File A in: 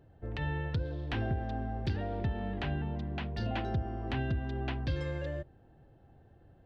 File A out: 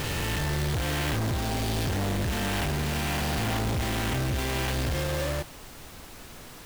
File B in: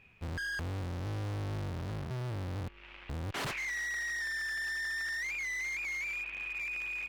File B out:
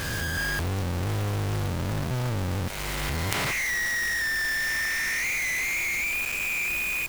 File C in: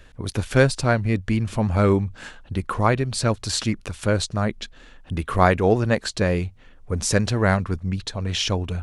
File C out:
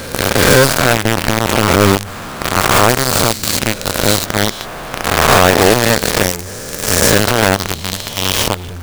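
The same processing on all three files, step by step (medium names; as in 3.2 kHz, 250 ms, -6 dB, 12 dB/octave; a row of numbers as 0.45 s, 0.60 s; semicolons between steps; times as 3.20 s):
reverse spectral sustain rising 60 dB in 2.65 s; companded quantiser 2-bit; added noise pink -43 dBFS; trim -1.5 dB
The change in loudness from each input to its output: +7.5 LU, +9.5 LU, +10.0 LU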